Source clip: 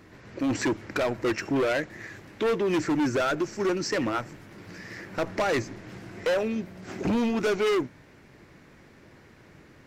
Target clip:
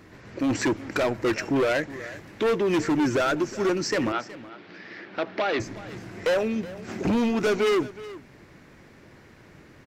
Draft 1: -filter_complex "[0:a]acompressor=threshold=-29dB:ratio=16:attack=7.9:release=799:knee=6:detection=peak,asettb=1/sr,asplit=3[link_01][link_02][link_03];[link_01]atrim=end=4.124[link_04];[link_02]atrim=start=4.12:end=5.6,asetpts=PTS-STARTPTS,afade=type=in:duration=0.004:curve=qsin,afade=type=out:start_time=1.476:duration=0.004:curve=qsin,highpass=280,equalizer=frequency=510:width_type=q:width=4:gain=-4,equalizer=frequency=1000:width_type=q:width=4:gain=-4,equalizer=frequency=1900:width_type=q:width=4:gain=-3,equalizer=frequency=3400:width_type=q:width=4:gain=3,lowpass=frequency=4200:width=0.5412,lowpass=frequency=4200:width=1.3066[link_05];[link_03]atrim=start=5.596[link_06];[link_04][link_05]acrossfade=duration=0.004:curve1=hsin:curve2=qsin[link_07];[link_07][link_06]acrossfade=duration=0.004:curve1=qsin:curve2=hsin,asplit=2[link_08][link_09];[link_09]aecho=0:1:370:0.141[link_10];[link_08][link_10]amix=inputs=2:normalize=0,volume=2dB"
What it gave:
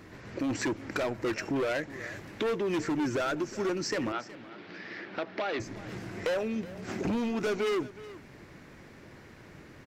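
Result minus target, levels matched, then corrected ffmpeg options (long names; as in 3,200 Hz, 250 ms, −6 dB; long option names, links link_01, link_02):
downward compressor: peak gain reduction +7.5 dB
-filter_complex "[0:a]asettb=1/sr,asplit=3[link_01][link_02][link_03];[link_01]atrim=end=4.124[link_04];[link_02]atrim=start=4.12:end=5.6,asetpts=PTS-STARTPTS,afade=type=in:duration=0.004:curve=qsin,afade=type=out:start_time=1.476:duration=0.004:curve=qsin,highpass=280,equalizer=frequency=510:width_type=q:width=4:gain=-4,equalizer=frequency=1000:width_type=q:width=4:gain=-4,equalizer=frequency=1900:width_type=q:width=4:gain=-3,equalizer=frequency=3400:width_type=q:width=4:gain=3,lowpass=frequency=4200:width=0.5412,lowpass=frequency=4200:width=1.3066[link_05];[link_03]atrim=start=5.596[link_06];[link_04][link_05]acrossfade=duration=0.004:curve1=hsin:curve2=qsin[link_07];[link_07][link_06]acrossfade=duration=0.004:curve1=qsin:curve2=hsin,asplit=2[link_08][link_09];[link_09]aecho=0:1:370:0.141[link_10];[link_08][link_10]amix=inputs=2:normalize=0,volume=2dB"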